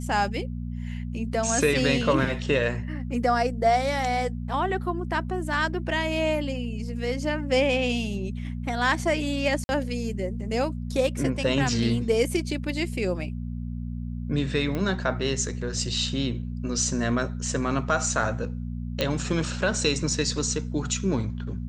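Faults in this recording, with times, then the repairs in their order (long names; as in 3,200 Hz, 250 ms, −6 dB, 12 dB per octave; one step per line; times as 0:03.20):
mains hum 60 Hz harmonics 4 −32 dBFS
0:09.64–0:09.69: drop-out 51 ms
0:14.75: click −17 dBFS
0:19.01: click −10 dBFS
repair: click removal
hum removal 60 Hz, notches 4
repair the gap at 0:09.64, 51 ms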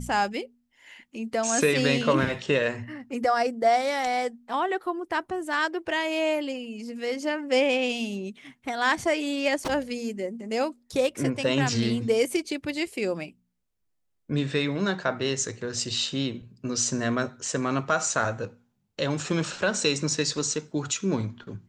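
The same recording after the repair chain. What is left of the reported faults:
none of them is left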